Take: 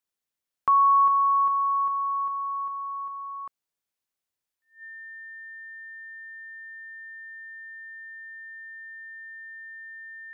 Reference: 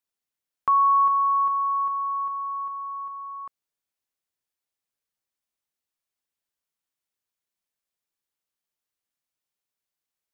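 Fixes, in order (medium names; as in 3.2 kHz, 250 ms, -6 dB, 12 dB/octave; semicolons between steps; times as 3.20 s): band-stop 1.8 kHz, Q 30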